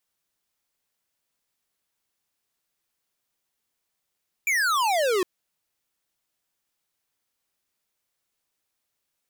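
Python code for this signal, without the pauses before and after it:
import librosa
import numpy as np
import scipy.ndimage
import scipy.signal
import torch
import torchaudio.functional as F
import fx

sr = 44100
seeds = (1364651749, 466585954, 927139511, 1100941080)

y = fx.laser_zap(sr, level_db=-22.5, start_hz=2400.0, end_hz=350.0, length_s=0.76, wave='square')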